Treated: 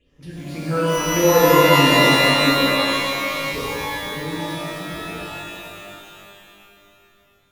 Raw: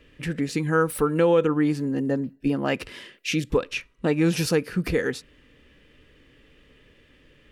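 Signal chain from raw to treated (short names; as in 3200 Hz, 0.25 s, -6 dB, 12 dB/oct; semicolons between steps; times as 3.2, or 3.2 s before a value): Doppler pass-by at 1.55, 8 m/s, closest 3 m; phaser stages 6, 1.7 Hz, lowest notch 390–3700 Hz; shimmer reverb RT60 2.6 s, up +12 st, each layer -2 dB, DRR -7.5 dB; gain +2 dB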